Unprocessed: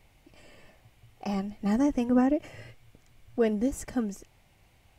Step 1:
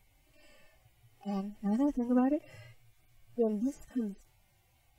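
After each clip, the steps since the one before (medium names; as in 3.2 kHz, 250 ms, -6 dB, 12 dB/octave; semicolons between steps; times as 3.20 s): harmonic-percussive separation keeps harmonic; treble shelf 7.8 kHz +10.5 dB; trim -4.5 dB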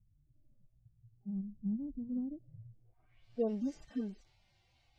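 low-pass sweep 150 Hz -> 4.5 kHz, 2.68–3.26 s; trim -3.5 dB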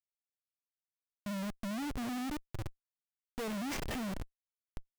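spectral noise reduction 8 dB; resonant high shelf 1.6 kHz +11 dB, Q 3; Schmitt trigger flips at -48 dBFS; trim +5 dB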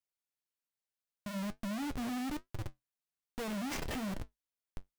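flange 1.2 Hz, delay 9.1 ms, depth 3.7 ms, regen -61%; trim +4 dB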